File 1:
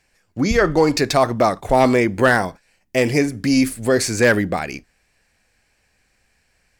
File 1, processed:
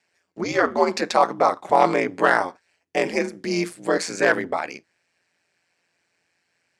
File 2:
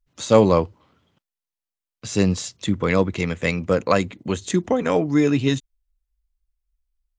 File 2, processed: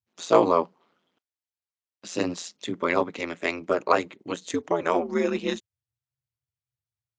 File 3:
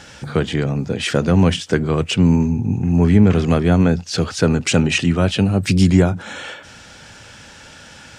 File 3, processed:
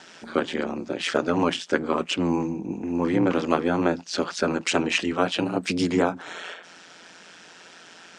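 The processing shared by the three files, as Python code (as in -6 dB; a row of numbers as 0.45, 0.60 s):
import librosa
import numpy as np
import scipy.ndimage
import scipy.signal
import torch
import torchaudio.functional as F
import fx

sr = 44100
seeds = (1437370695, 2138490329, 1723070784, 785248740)

y = fx.dynamic_eq(x, sr, hz=1000.0, q=1.2, threshold_db=-33.0, ratio=4.0, max_db=7)
y = y * np.sin(2.0 * np.pi * 86.0 * np.arange(len(y)) / sr)
y = fx.bandpass_edges(y, sr, low_hz=260.0, high_hz=7700.0)
y = y * librosa.db_to_amplitude(-2.5)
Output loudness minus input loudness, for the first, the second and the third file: -4.0, -5.0, -8.0 LU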